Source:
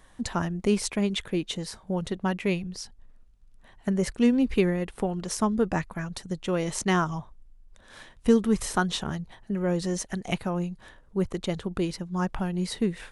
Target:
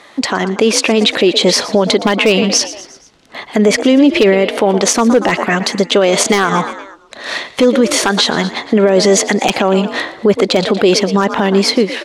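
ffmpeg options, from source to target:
-filter_complex "[0:a]dynaudnorm=f=150:g=11:m=6.31,asetrate=48000,aresample=44100,asplit=2[s0][s1];[s1]acompressor=threshold=0.0631:ratio=8,volume=1.26[s2];[s0][s2]amix=inputs=2:normalize=0,highpass=430,lowpass=4400,equalizer=f=1200:w=0.6:g=-6.5,asplit=5[s3][s4][s5][s6][s7];[s4]adelay=117,afreqshift=48,volume=0.133[s8];[s5]adelay=234,afreqshift=96,volume=0.0692[s9];[s6]adelay=351,afreqshift=144,volume=0.0359[s10];[s7]adelay=468,afreqshift=192,volume=0.0188[s11];[s3][s8][s9][s10][s11]amix=inputs=5:normalize=0,aeval=exprs='0.355*(abs(mod(val(0)/0.355+3,4)-2)-1)':c=same,alimiter=level_in=8.41:limit=0.891:release=50:level=0:latency=1,volume=0.891"

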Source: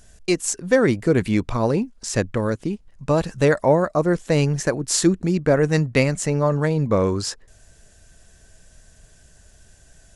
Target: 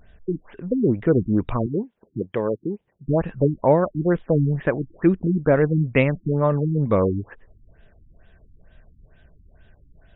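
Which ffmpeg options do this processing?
-filter_complex "[0:a]asettb=1/sr,asplit=3[s0][s1][s2];[s0]atrim=end=1.664[s3];[s1]atrim=start=1.66:end=3.07,asetpts=PTS-STARTPTS,afade=t=in:d=0.004:c=qsin,afade=t=out:st=1.406:d=0.004:c=qsin,highpass=180,equalizer=f=250:t=q:w=4:g=-7,equalizer=f=410:t=q:w=4:g=4,equalizer=f=1300:t=q:w=4:g=-7,lowpass=f=7000:w=0.5412,lowpass=f=7000:w=1.3066[s4];[s2]atrim=start=3.066[s5];[s3][s4]acrossfade=d=0.004:c1=hsin:c2=qsin[s6];[s6][s5]acrossfade=d=0.004:c1=qsin:c2=hsin,afftfilt=real='re*lt(b*sr/1024,330*pow(3900/330,0.5+0.5*sin(2*PI*2.2*pts/sr)))':imag='im*lt(b*sr/1024,330*pow(3900/330,0.5+0.5*sin(2*PI*2.2*pts/sr)))':win_size=1024:overlap=0.75"

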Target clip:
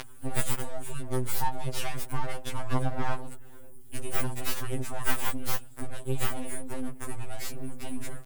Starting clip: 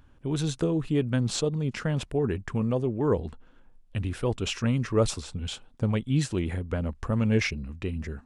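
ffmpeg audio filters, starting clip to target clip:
-filter_complex "[0:a]bandreject=f=60:t=h:w=6,bandreject=f=120:t=h:w=6,bandreject=f=180:t=h:w=6,bandreject=f=240:t=h:w=6,bandreject=f=300:t=h:w=6,bandreject=f=360:t=h:w=6,bandreject=f=420:t=h:w=6,bandreject=f=480:t=h:w=6,acompressor=threshold=0.0316:ratio=6,asplit=2[s0][s1];[s1]alimiter=level_in=2.51:limit=0.0631:level=0:latency=1:release=339,volume=0.398,volume=1.06[s2];[s0][s2]amix=inputs=2:normalize=0,acompressor=mode=upward:threshold=0.00891:ratio=2.5,aexciter=amount=15.9:drive=8.3:freq=8100,asplit=2[s3][s4];[s4]adelay=458,lowpass=f=1500:p=1,volume=0.0708,asplit=2[s5][s6];[s6]adelay=458,lowpass=f=1500:p=1,volume=0.54,asplit=2[s7][s8];[s8]adelay=458,lowpass=f=1500:p=1,volume=0.54,asplit=2[s9][s10];[s10]adelay=458,lowpass=f=1500:p=1,volume=0.54[s11];[s5][s7][s9][s11]amix=inputs=4:normalize=0[s12];[s3][s12]amix=inputs=2:normalize=0,asoftclip=type=hard:threshold=0.335,asettb=1/sr,asplit=3[s13][s14][s15];[s13]atrim=end=1.304[s16];[s14]atrim=start=1.3:end=3.15,asetpts=PTS-STARTPTS,afade=t=in:d=0.004:c=qsin,afade=t=out:st=1.846:d=0.004:c=qsin,asplit=2[s17][s18];[s18]highpass=f=720:p=1,volume=7.08,asoftclip=type=tanh:threshold=0.335[s19];[s17][s19]amix=inputs=2:normalize=0,lowpass=f=2200:p=1,volume=0.501[s20];[s15]atrim=start=3.146[s21];[s16][s20]acrossfade=d=0.004:c1=hsin:c2=qsin[s22];[s22][s21]acrossfade=d=0.004:c1=qsin:c2=hsin,aeval=exprs='abs(val(0))':c=same,afftfilt=real='re*2.45*eq(mod(b,6),0)':imag='im*2.45*eq(mod(b,6),0)':win_size=2048:overlap=0.75"

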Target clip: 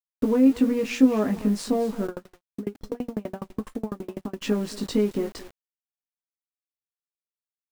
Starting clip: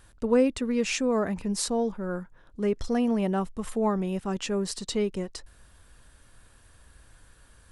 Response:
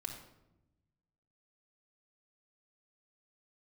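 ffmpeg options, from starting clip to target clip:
-filter_complex "[0:a]acompressor=threshold=0.0355:ratio=6,equalizer=f=270:w=3.5:g=11,asplit=2[s0][s1];[s1]adelay=19,volume=0.631[s2];[s0][s2]amix=inputs=2:normalize=0,agate=range=0.0224:threshold=0.00794:ratio=3:detection=peak,lowpass=f=2200:p=1,aecho=1:1:224:0.141,aeval=exprs='sgn(val(0))*max(abs(val(0))-0.00316,0)':c=same,lowshelf=f=110:g=-5.5,acrusher=bits=8:mix=0:aa=0.000001,asplit=3[s3][s4][s5];[s3]afade=t=out:st=2.06:d=0.02[s6];[s4]aeval=exprs='val(0)*pow(10,-34*if(lt(mod(12*n/s,1),2*abs(12)/1000),1-mod(12*n/s,1)/(2*abs(12)/1000),(mod(12*n/s,1)-2*abs(12)/1000)/(1-2*abs(12)/1000))/20)':c=same,afade=t=in:st=2.06:d=0.02,afade=t=out:st=4.41:d=0.02[s7];[s5]afade=t=in:st=4.41:d=0.02[s8];[s6][s7][s8]amix=inputs=3:normalize=0,volume=2.11"

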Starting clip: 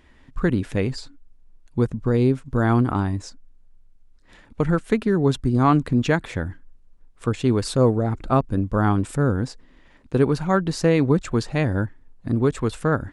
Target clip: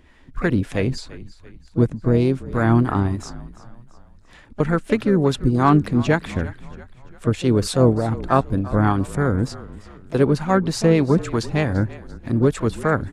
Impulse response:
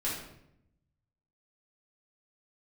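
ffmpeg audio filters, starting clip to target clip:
-filter_complex "[0:a]acrossover=split=500[s0][s1];[s0]aeval=exprs='val(0)*(1-0.5/2+0.5/2*cos(2*PI*3.3*n/s))':c=same[s2];[s1]aeval=exprs='val(0)*(1-0.5/2-0.5/2*cos(2*PI*3.3*n/s))':c=same[s3];[s2][s3]amix=inputs=2:normalize=0,asplit=5[s4][s5][s6][s7][s8];[s5]adelay=340,afreqshift=-39,volume=0.126[s9];[s6]adelay=680,afreqshift=-78,volume=0.0617[s10];[s7]adelay=1020,afreqshift=-117,volume=0.0302[s11];[s8]adelay=1360,afreqshift=-156,volume=0.0148[s12];[s4][s9][s10][s11][s12]amix=inputs=5:normalize=0,asplit=2[s13][s14];[s14]asetrate=58866,aresample=44100,atempo=0.749154,volume=0.2[s15];[s13][s15]amix=inputs=2:normalize=0,volume=1.58"

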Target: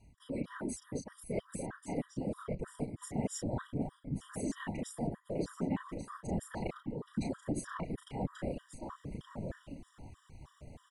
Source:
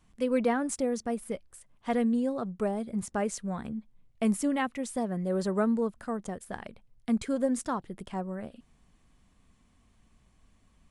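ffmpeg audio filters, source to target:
-filter_complex "[0:a]acrossover=split=370|3000[s0][s1][s2];[s1]acompressor=threshold=0.0316:ratio=6[s3];[s0][s3][s2]amix=inputs=3:normalize=0,asplit=2[s4][s5];[s5]adelay=34,volume=0.708[s6];[s4][s6]amix=inputs=2:normalize=0,areverse,acompressor=threshold=0.00891:ratio=6,areverse,asplit=2[s7][s8];[s8]adelay=1138,lowpass=f=4200:p=1,volume=0.631,asplit=2[s9][s10];[s10]adelay=1138,lowpass=f=4200:p=1,volume=0.18,asplit=2[s11][s12];[s12]adelay=1138,lowpass=f=4200:p=1,volume=0.18[s13];[s7][s9][s11][s13]amix=inputs=4:normalize=0,afftfilt=real='hypot(re,im)*cos(2*PI*random(0))':imag='hypot(re,im)*sin(2*PI*random(1))':win_size=512:overlap=0.75,lowshelf=f=90:g=9.5,afftfilt=real='re*gt(sin(2*PI*3.2*pts/sr)*(1-2*mod(floor(b*sr/1024/970),2)),0)':imag='im*gt(sin(2*PI*3.2*pts/sr)*(1-2*mod(floor(b*sr/1024/970),2)),0)':win_size=1024:overlap=0.75,volume=3.76"

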